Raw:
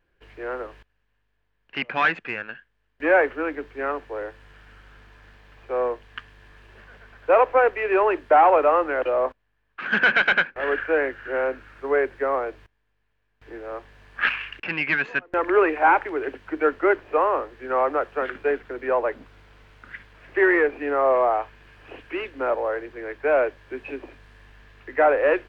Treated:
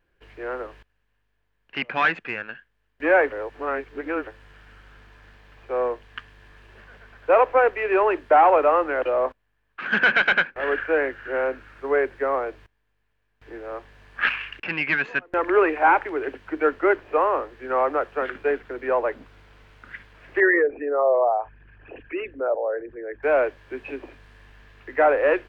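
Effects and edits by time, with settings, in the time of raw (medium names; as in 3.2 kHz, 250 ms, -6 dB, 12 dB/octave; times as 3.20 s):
3.32–4.27 s: reverse
20.40–23.23 s: resonances exaggerated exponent 2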